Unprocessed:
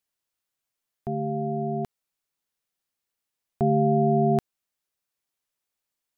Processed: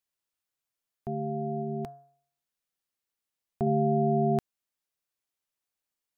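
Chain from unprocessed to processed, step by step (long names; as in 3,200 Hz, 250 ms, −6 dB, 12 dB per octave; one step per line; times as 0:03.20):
0:01.61–0:03.67: hum removal 140.1 Hz, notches 12
level −4 dB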